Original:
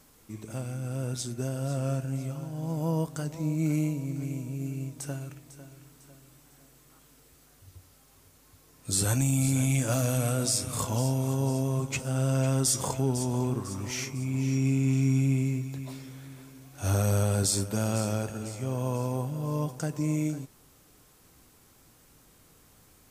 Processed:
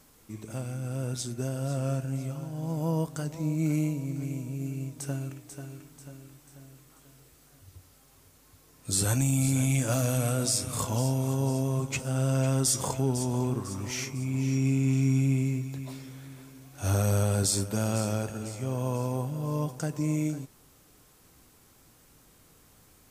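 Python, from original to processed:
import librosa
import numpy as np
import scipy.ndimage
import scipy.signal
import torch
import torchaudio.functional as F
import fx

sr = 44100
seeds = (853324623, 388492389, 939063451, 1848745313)

y = fx.echo_throw(x, sr, start_s=4.51, length_s=0.84, ms=490, feedback_pct=50, wet_db=-8.0)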